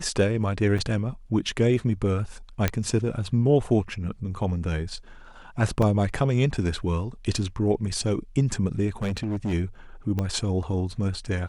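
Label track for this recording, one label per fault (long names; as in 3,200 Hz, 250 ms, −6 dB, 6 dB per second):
0.780000	0.790000	drop-out 5 ms
2.680000	2.680000	click −8 dBFS
5.820000	5.820000	drop-out 4 ms
9.020000	9.540000	clipping −23.5 dBFS
10.190000	10.190000	click −15 dBFS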